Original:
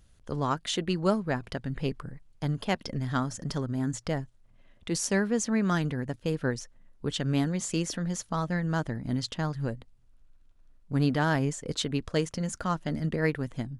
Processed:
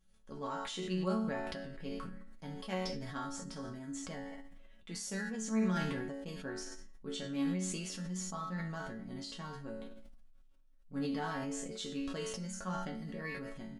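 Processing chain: resonator bank F#3 minor, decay 0.44 s; speakerphone echo 0.21 s, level -23 dB; sustainer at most 25 dB/s; gain +7 dB

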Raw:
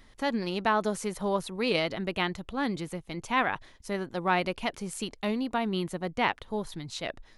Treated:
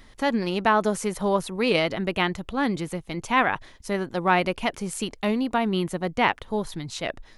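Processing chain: dynamic EQ 4100 Hz, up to -4 dB, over -49 dBFS, Q 2.5; gain +5.5 dB

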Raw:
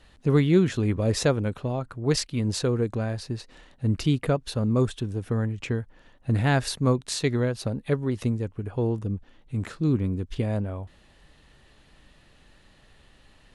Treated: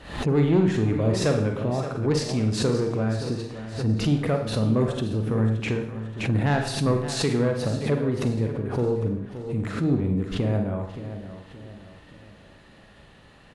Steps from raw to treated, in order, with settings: HPF 88 Hz 6 dB/oct; high shelf 2800 Hz -9 dB; in parallel at +1 dB: compressor, threshold -35 dBFS, peak gain reduction 18.5 dB; on the sum: soft clip -15 dBFS, distortion -18 dB; feedback echo 0.573 s, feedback 42%, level -12 dB; on a send at -3.5 dB: reverb RT60 0.60 s, pre-delay 37 ms; on the sum: backwards sustainer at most 100 dB/s

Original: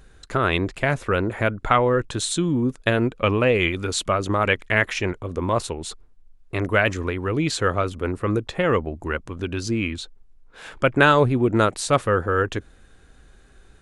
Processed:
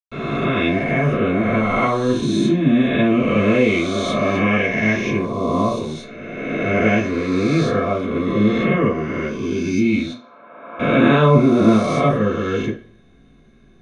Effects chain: spectral swells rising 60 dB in 2.04 s; 10.01–10.68 band-pass 1000 Hz, Q 3.9; reverb RT60 0.50 s, pre-delay 0.116 s, DRR -60 dB; gain -16 dB

